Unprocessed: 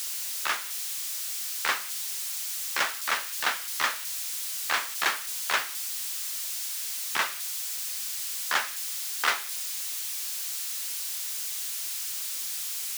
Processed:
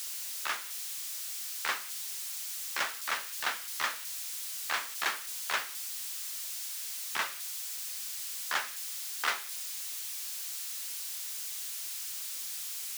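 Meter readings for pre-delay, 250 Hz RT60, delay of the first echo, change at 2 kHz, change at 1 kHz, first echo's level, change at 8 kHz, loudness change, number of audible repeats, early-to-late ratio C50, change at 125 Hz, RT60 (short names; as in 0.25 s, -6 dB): none, none, none, -5.5 dB, -5.5 dB, none, -5.5 dB, -5.5 dB, none, none, n/a, none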